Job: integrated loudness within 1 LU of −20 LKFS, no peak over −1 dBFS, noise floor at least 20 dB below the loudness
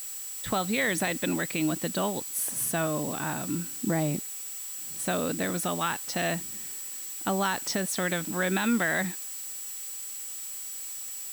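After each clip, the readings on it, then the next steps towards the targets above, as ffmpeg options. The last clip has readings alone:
interfering tone 7,800 Hz; level of the tone −38 dBFS; background noise floor −38 dBFS; target noise floor −50 dBFS; integrated loudness −29.5 LKFS; sample peak −15.0 dBFS; target loudness −20.0 LKFS
→ -af "bandreject=frequency=7800:width=30"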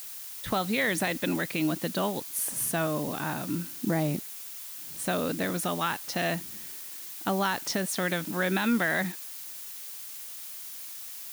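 interfering tone none found; background noise floor −41 dBFS; target noise floor −50 dBFS
→ -af "afftdn=noise_reduction=9:noise_floor=-41"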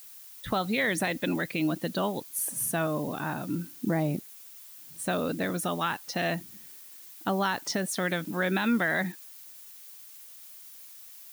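background noise floor −49 dBFS; target noise floor −50 dBFS
→ -af "afftdn=noise_reduction=6:noise_floor=-49"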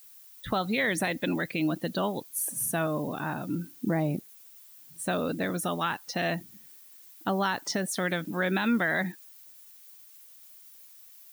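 background noise floor −53 dBFS; integrated loudness −29.5 LKFS; sample peak −16.0 dBFS; target loudness −20.0 LKFS
→ -af "volume=9.5dB"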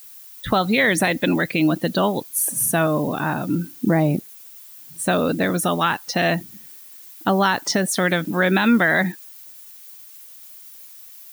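integrated loudness −20.0 LKFS; sample peak −6.5 dBFS; background noise floor −43 dBFS

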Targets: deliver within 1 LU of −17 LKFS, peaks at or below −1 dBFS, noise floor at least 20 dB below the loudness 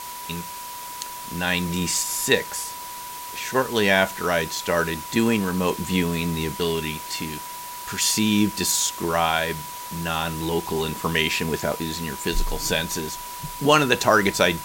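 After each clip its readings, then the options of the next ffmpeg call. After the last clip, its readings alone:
interfering tone 980 Hz; level of the tone −35 dBFS; background noise floor −35 dBFS; target noise floor −44 dBFS; integrated loudness −23.5 LKFS; sample peak −3.0 dBFS; target loudness −17.0 LKFS
→ -af "bandreject=frequency=980:width=30"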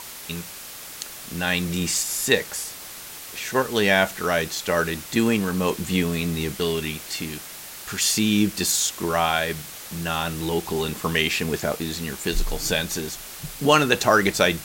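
interfering tone none found; background noise floor −39 dBFS; target noise floor −43 dBFS
→ -af "afftdn=noise_reduction=6:noise_floor=-39"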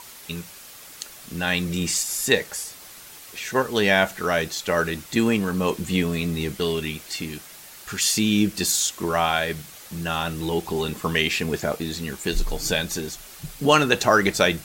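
background noise floor −44 dBFS; integrated loudness −23.0 LKFS; sample peak −2.5 dBFS; target loudness −17.0 LKFS
→ -af "volume=6dB,alimiter=limit=-1dB:level=0:latency=1"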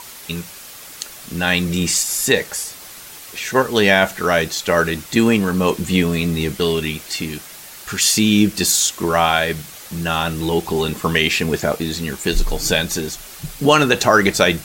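integrated loudness −17.5 LKFS; sample peak −1.0 dBFS; background noise floor −38 dBFS

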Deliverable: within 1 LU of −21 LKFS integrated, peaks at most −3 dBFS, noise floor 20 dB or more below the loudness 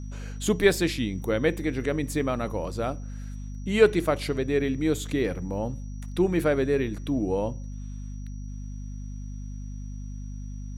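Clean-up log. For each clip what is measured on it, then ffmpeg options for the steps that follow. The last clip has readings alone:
mains hum 50 Hz; hum harmonics up to 250 Hz; level of the hum −33 dBFS; interfering tone 5,800 Hz; level of the tone −57 dBFS; integrated loudness −26.5 LKFS; sample peak −5.0 dBFS; target loudness −21.0 LKFS
→ -af "bandreject=frequency=50:width_type=h:width=6,bandreject=frequency=100:width_type=h:width=6,bandreject=frequency=150:width_type=h:width=6,bandreject=frequency=200:width_type=h:width=6,bandreject=frequency=250:width_type=h:width=6"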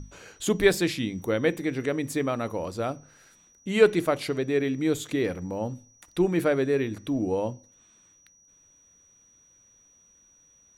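mains hum none found; interfering tone 5,800 Hz; level of the tone −57 dBFS
→ -af "bandreject=frequency=5800:width=30"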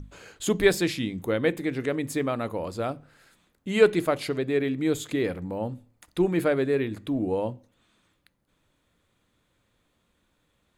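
interfering tone none found; integrated loudness −26.5 LKFS; sample peak −5.5 dBFS; target loudness −21.0 LKFS
→ -af "volume=5.5dB,alimiter=limit=-3dB:level=0:latency=1"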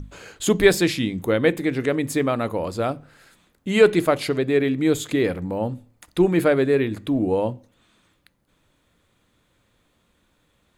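integrated loudness −21.5 LKFS; sample peak −3.0 dBFS; background noise floor −66 dBFS

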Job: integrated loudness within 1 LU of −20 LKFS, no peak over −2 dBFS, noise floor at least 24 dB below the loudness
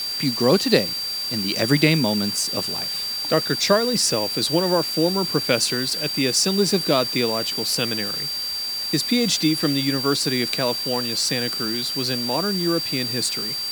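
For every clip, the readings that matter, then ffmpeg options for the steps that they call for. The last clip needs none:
interfering tone 4,700 Hz; level of the tone −25 dBFS; background noise floor −27 dBFS; target noise floor −45 dBFS; integrated loudness −20.5 LKFS; sample peak −1.5 dBFS; target loudness −20.0 LKFS
→ -af "bandreject=frequency=4700:width=30"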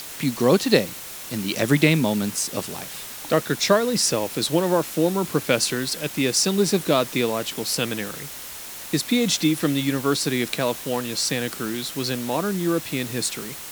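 interfering tone none found; background noise floor −37 dBFS; target noise floor −47 dBFS
→ -af "afftdn=noise_reduction=10:noise_floor=-37"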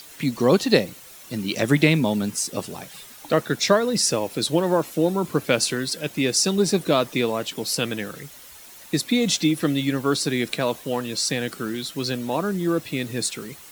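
background noise floor −45 dBFS; target noise floor −47 dBFS
→ -af "afftdn=noise_reduction=6:noise_floor=-45"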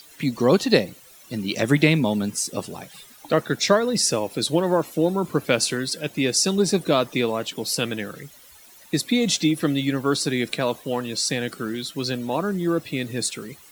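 background noise floor −49 dBFS; integrated loudness −23.0 LKFS; sample peak −2.0 dBFS; target loudness −20.0 LKFS
→ -af "volume=3dB,alimiter=limit=-2dB:level=0:latency=1"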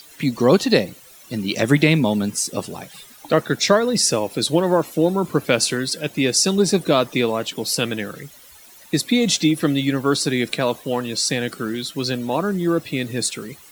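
integrated loudness −20.0 LKFS; sample peak −2.0 dBFS; background noise floor −46 dBFS

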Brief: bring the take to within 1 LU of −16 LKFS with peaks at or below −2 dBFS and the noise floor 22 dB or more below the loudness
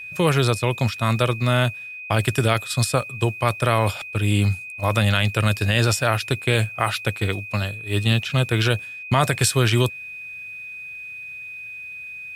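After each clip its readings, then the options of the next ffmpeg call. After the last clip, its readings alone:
interfering tone 2,500 Hz; level of the tone −33 dBFS; integrated loudness −21.5 LKFS; sample peak −6.0 dBFS; target loudness −16.0 LKFS
→ -af "bandreject=frequency=2500:width=30"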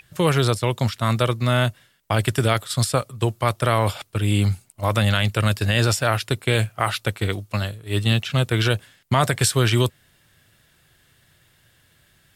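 interfering tone none found; integrated loudness −21.5 LKFS; sample peak −6.5 dBFS; target loudness −16.0 LKFS
→ -af "volume=5.5dB,alimiter=limit=-2dB:level=0:latency=1"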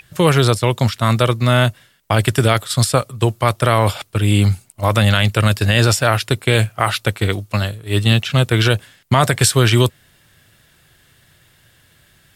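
integrated loudness −16.5 LKFS; sample peak −2.0 dBFS; background noise floor −55 dBFS

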